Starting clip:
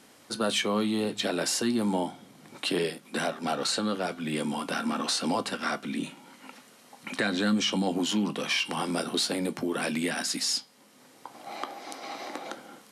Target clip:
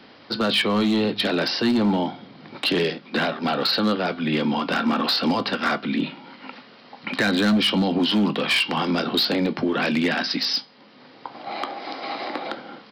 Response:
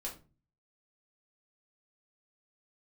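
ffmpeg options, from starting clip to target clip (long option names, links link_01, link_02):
-filter_complex "[0:a]acrossover=split=260|1300[link_01][link_02][link_03];[link_02]alimiter=level_in=2.5dB:limit=-24dB:level=0:latency=1:release=19,volume=-2.5dB[link_04];[link_01][link_04][link_03]amix=inputs=3:normalize=0,aresample=11025,aresample=44100,volume=23.5dB,asoftclip=hard,volume=-23.5dB,volume=8.5dB"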